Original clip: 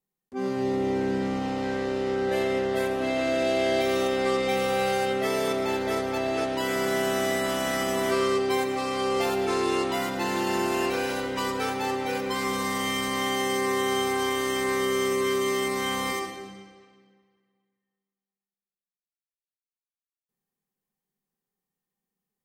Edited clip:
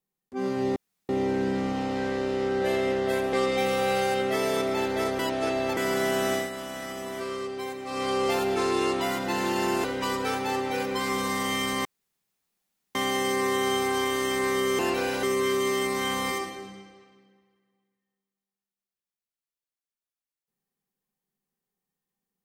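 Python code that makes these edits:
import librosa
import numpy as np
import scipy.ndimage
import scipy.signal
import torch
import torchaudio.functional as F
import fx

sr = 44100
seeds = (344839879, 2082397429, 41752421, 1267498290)

y = fx.edit(x, sr, fx.insert_room_tone(at_s=0.76, length_s=0.33),
    fx.cut(start_s=3.0, length_s=1.24),
    fx.reverse_span(start_s=6.1, length_s=0.58),
    fx.fade_down_up(start_s=7.24, length_s=1.69, db=-9.0, fade_s=0.17),
    fx.move(start_s=10.75, length_s=0.44, to_s=15.04),
    fx.insert_room_tone(at_s=13.2, length_s=1.1), tone=tone)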